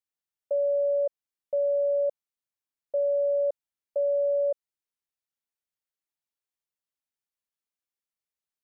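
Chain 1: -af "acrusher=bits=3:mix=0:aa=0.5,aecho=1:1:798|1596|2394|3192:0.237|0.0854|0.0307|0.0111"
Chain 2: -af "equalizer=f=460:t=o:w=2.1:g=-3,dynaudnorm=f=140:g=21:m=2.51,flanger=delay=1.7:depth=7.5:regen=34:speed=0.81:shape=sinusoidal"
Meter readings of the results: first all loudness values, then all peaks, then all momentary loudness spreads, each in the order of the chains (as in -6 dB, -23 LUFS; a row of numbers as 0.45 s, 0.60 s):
-26.5 LUFS, -26.5 LUFS; -17.5 dBFS, -16.5 dBFS; 19 LU, 12 LU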